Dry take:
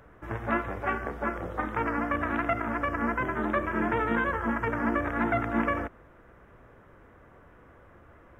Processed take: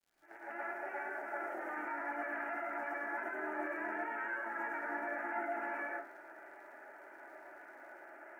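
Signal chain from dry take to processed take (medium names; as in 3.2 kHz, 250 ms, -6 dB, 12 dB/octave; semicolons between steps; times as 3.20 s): fade-in on the opening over 2.04 s; high-pass 400 Hz 24 dB/octave; peak limiter -36 dBFS, peak gain reduction 22 dB; static phaser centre 730 Hz, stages 8; crackle 140 per s -63 dBFS; reverberation RT60 0.35 s, pre-delay 97 ms, DRR -4.5 dB; trim +1.5 dB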